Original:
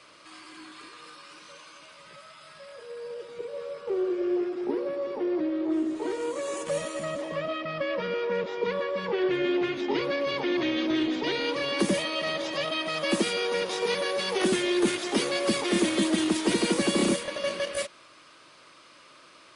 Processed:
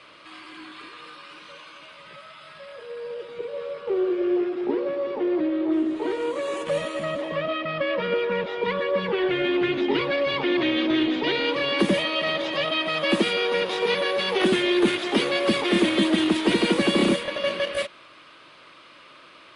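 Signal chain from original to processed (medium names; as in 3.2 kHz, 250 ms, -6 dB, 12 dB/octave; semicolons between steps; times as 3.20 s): resonant high shelf 4.5 kHz -8.5 dB, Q 1.5; 8.12–10.44 s: phaser 1.2 Hz, delay 1.6 ms, feedback 33%; trim +4 dB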